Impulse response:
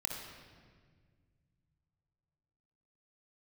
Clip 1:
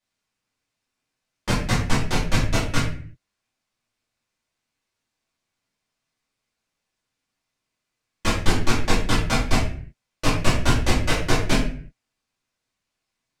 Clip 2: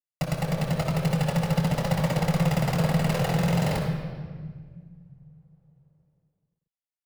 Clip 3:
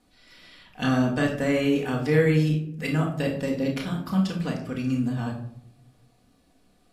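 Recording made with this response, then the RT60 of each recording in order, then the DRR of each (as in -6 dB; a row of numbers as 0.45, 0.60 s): 2; 0.45, 1.7, 0.70 s; -8.0, 0.5, -1.0 dB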